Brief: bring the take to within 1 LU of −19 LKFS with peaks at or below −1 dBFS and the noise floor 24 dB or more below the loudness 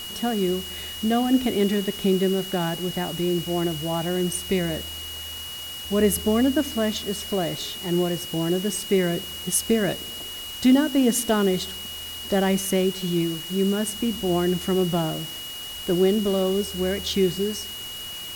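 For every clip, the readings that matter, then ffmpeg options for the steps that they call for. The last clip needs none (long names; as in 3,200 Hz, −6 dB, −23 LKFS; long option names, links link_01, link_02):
interfering tone 2,900 Hz; level of the tone −34 dBFS; background noise floor −35 dBFS; target noise floor −48 dBFS; integrated loudness −24.0 LKFS; sample peak −8.5 dBFS; target loudness −19.0 LKFS
→ -af "bandreject=frequency=2900:width=30"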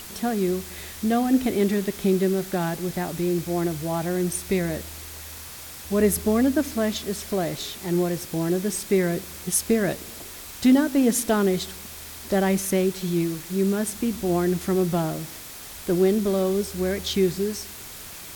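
interfering tone none found; background noise floor −40 dBFS; target noise floor −48 dBFS
→ -af "afftdn=noise_reduction=8:noise_floor=-40"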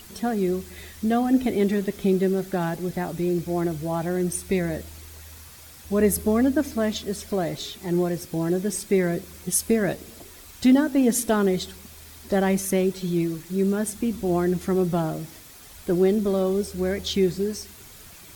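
background noise floor −46 dBFS; target noise floor −48 dBFS
→ -af "afftdn=noise_reduction=6:noise_floor=-46"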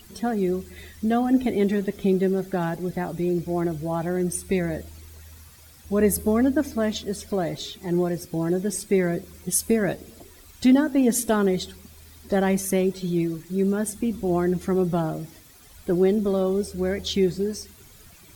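background noise floor −50 dBFS; integrated loudness −24.5 LKFS; sample peak −9.5 dBFS; target loudness −19.0 LKFS
→ -af "volume=5.5dB"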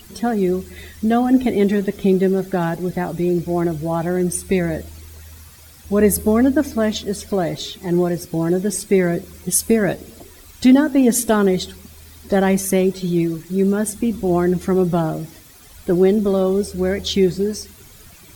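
integrated loudness −19.0 LKFS; sample peak −4.0 dBFS; background noise floor −44 dBFS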